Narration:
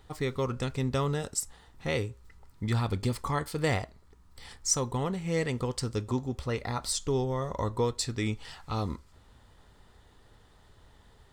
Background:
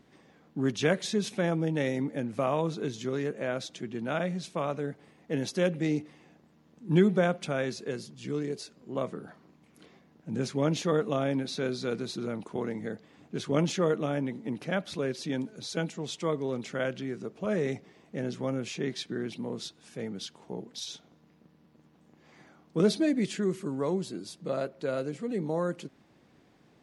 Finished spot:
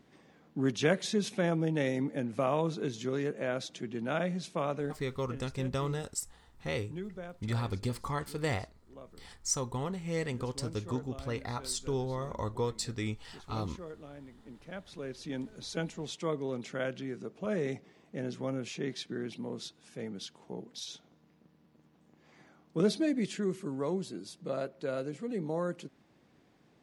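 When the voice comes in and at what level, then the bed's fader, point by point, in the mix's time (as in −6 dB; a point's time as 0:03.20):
4.80 s, −4.5 dB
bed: 0:04.95 −1.5 dB
0:05.44 −18.5 dB
0:14.31 −18.5 dB
0:15.54 −3.5 dB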